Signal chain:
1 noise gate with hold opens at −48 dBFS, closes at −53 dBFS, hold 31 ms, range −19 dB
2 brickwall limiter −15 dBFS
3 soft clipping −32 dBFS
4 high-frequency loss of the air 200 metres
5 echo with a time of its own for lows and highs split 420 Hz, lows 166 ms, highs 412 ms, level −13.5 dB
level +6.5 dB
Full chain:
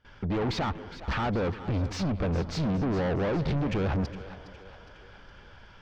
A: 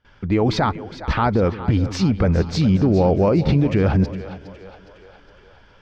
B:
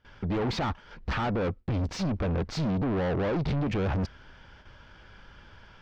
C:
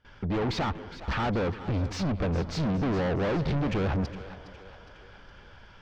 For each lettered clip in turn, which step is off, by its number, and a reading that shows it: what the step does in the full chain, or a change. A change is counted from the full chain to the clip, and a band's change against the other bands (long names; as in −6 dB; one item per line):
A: 3, distortion level −6 dB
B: 5, echo-to-direct ratio −12.0 dB to none audible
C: 2, average gain reduction 2.5 dB